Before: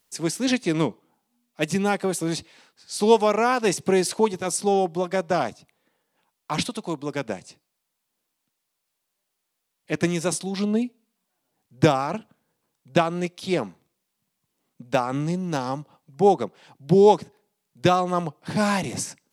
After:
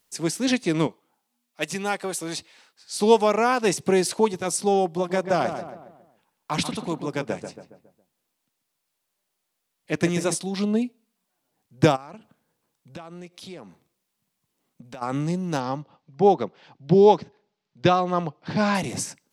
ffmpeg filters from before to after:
-filter_complex "[0:a]asettb=1/sr,asplit=3[s0][s1][s2];[s0]atrim=end=0.874[s3];[s1]atrim=start=0.87:end=2.93,asetpts=PTS-STARTPTS,afade=t=in:d=0.004:c=qsin,afade=t=out:st=2.056:d=0.004:c=qsin,lowshelf=f=400:g=-11[s4];[s2]atrim=start=2.926[s5];[s3][s4]acrossfade=d=0.004:c1=hsin:c2=qsin[s6];[s6][s5]acrossfade=d=0.004:c1=qsin:c2=hsin,asettb=1/sr,asplit=3[s7][s8][s9];[s7]atrim=end=4.844[s10];[s8]atrim=start=4.84:end=10.35,asetpts=PTS-STARTPTS,afade=t=in:d=0.004:c=qsin,afade=t=out:st=5.506:d=0.004:c=qsin,asplit=2[s11][s12];[s12]adelay=138,lowpass=f=1900:p=1,volume=0.398,asplit=2[s13][s14];[s14]adelay=138,lowpass=f=1900:p=1,volume=0.47,asplit=2[s15][s16];[s16]adelay=138,lowpass=f=1900:p=1,volume=0.47,asplit=2[s17][s18];[s18]adelay=138,lowpass=f=1900:p=1,volume=0.47,asplit=2[s19][s20];[s20]adelay=138,lowpass=f=1900:p=1,volume=0.47[s21];[s11][s13][s15][s17][s19][s21]amix=inputs=6:normalize=0,atrim=end_sample=242991[s22];[s9]atrim=start=10.346[s23];[s10][s22]acrossfade=d=0.004:c1=hsin:c2=qsin[s24];[s24][s23]acrossfade=d=0.004:c1=qsin:c2=hsin,asplit=3[s25][s26][s27];[s25]afade=t=out:st=11.95:d=0.02[s28];[s26]acompressor=threshold=0.0112:ratio=4:attack=3.2:release=140:knee=1:detection=peak,afade=t=in:st=11.95:d=0.02,afade=t=out:st=15.01:d=0.02[s29];[s27]afade=t=in:st=15.01:d=0.02[s30];[s28][s29][s30]amix=inputs=3:normalize=0,asettb=1/sr,asplit=3[s31][s32][s33];[s31]atrim=end=15.604[s34];[s32]atrim=start=15.6:end=18.75,asetpts=PTS-STARTPTS,afade=t=in:d=0.004:c=qsin,afade=t=out:st=3.146:d=0.004:c=qsin,lowpass=f=5400:w=0.5412,lowpass=f=5400:w=1.3066[s35];[s33]atrim=start=18.746[s36];[s34][s35]acrossfade=d=0.004:c1=hsin:c2=qsin[s37];[s37][s36]acrossfade=d=0.004:c1=qsin:c2=hsin"

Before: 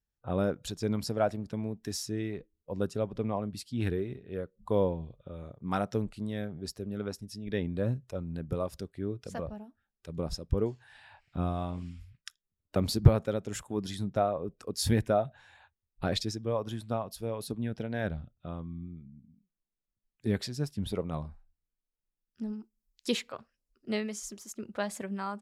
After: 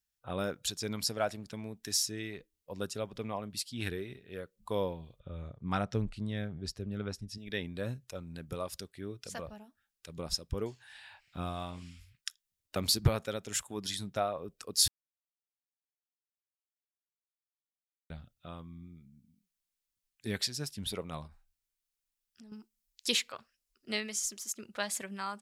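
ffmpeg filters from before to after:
-filter_complex "[0:a]asettb=1/sr,asplit=3[s0][s1][s2];[s0]atrim=end=5.204[s3];[s1]atrim=start=5.2:end=7.38,asetpts=PTS-STARTPTS,afade=t=in:d=0.004:c=qsin,afade=t=out:st=2.176:d=0.004:c=qsin,aemphasis=mode=reproduction:type=bsi[s4];[s2]atrim=start=7.376[s5];[s3][s4]acrossfade=d=0.004:c1=hsin:c2=qsin[s6];[s6][s5]acrossfade=d=0.004:c1=qsin:c2=hsin,asettb=1/sr,asplit=3[s7][s8][s9];[s7]atrim=end=21.274[s10];[s8]atrim=start=21.27:end=22.52,asetpts=PTS-STARTPTS,afade=t=in:d=0.004:c=qsin,afade=t=out:st=1.246:d=0.004:c=qsin,acompressor=threshold=0.00631:ratio=6:attack=3.2:release=140:knee=1:detection=peak[s11];[s9]atrim=start=22.516[s12];[s10][s11]acrossfade=d=0.004:c1=hsin:c2=qsin[s13];[s13][s12]acrossfade=d=0.004:c1=qsin:c2=hsin,asplit=3[s14][s15][s16];[s14]atrim=end=14.88,asetpts=PTS-STARTPTS,afade=t=out:st=14.876:d=0.004:c=hsin[s17];[s15]atrim=start=14.88:end=18.1,asetpts=PTS-STARTPTS,volume=0[s18];[s16]atrim=start=18.1,asetpts=PTS-STARTPTS,afade=t=in:d=0.004:c=hsin[s19];[s17][s18][s19]concat=n=3:v=0:a=1,tiltshelf=f=1300:g=-8"

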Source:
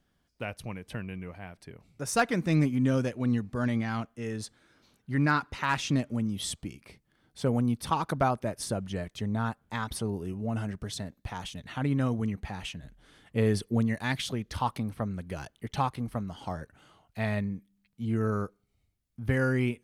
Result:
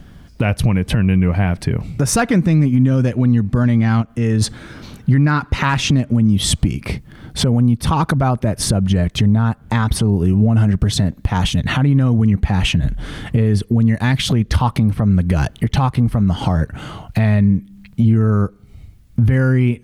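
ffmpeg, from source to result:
-filter_complex "[0:a]asplit=3[s0][s1][s2];[s0]afade=t=out:st=4.01:d=0.02[s3];[s1]acompressor=threshold=0.00562:ratio=3:attack=3.2:release=140:knee=1:detection=peak,afade=t=in:st=4.01:d=0.02,afade=t=out:st=4.41:d=0.02[s4];[s2]afade=t=in:st=4.41:d=0.02[s5];[s3][s4][s5]amix=inputs=3:normalize=0,bass=f=250:g=10,treble=f=4000:g=-4,acompressor=threshold=0.0141:ratio=4,alimiter=level_in=33.5:limit=0.891:release=50:level=0:latency=1,volume=0.562"

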